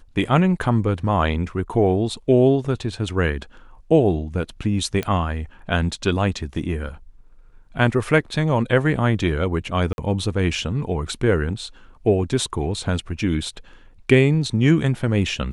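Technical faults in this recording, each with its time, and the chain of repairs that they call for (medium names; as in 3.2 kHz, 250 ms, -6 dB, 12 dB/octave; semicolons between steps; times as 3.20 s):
5.03 s: pop -12 dBFS
9.93–9.98 s: dropout 51 ms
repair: de-click; interpolate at 9.93 s, 51 ms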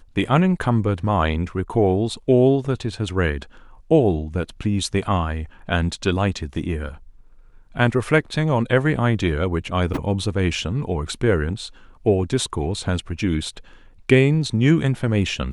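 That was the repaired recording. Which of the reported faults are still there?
nothing left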